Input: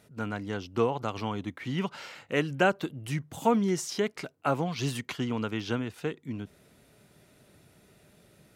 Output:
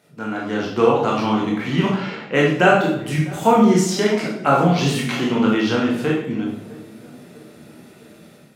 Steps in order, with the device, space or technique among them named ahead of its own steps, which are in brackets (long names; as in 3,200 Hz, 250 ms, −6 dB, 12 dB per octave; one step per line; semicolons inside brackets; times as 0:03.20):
0:01.94–0:02.44: low-pass that shuts in the quiet parts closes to 2,300 Hz, open at −26.5 dBFS
parametric band 11,000 Hz −3.5 dB 1.8 octaves
feedback echo with a low-pass in the loop 651 ms, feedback 59%, low-pass 1,200 Hz, level −20.5 dB
far laptop microphone (convolution reverb RT60 0.75 s, pre-delay 17 ms, DRR −3.5 dB; high-pass filter 150 Hz 12 dB per octave; automatic gain control gain up to 7 dB)
level +1.5 dB